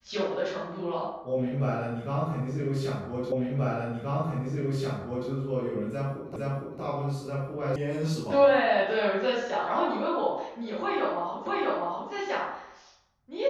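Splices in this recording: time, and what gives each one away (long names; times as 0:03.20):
0:03.32: the same again, the last 1.98 s
0:06.36: the same again, the last 0.46 s
0:07.76: cut off before it has died away
0:11.46: the same again, the last 0.65 s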